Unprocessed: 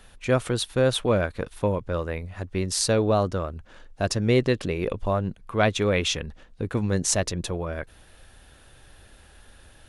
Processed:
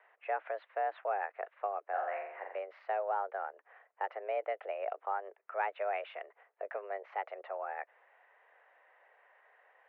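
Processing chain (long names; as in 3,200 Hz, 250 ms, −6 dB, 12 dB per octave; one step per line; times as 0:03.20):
downward compressor 2.5 to 1, threshold −24 dBFS, peak gain reduction 6.5 dB
single-sideband voice off tune +200 Hz 300–2,100 Hz
0:01.88–0:02.59: flutter between parallel walls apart 7.5 metres, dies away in 0.74 s
level −6.5 dB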